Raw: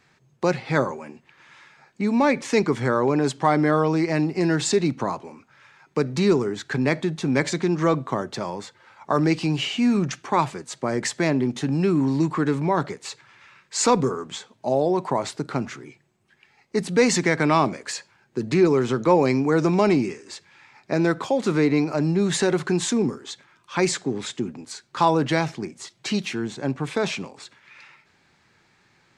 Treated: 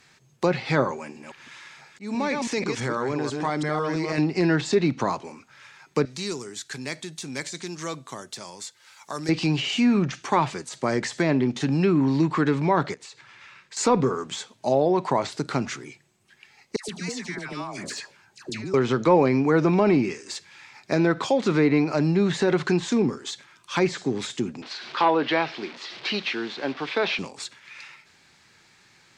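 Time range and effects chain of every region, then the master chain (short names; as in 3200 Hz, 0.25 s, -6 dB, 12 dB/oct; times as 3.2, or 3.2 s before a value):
0.99–4.18 reverse delay 0.165 s, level -5 dB + compressor 2:1, threshold -29 dBFS + auto swell 0.143 s
6.05–9.29 pre-emphasis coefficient 0.8 + mismatched tape noise reduction encoder only
12.94–13.77 compressor 16:1, threshold -43 dBFS + high shelf 6100 Hz -10.5 dB
16.76–18.74 compressor 12:1, threshold -29 dBFS + notch 510 Hz, Q 7.6 + dispersion lows, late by 0.126 s, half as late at 1100 Hz
24.62–27.19 delta modulation 64 kbps, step -35 dBFS + synth low-pass 4700 Hz, resonance Q 1.9 + three-band isolator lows -21 dB, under 250 Hz, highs -22 dB, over 3400 Hz
whole clip: de-esser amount 95%; treble ducked by the level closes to 2600 Hz, closed at -16 dBFS; high shelf 2500 Hz +10.5 dB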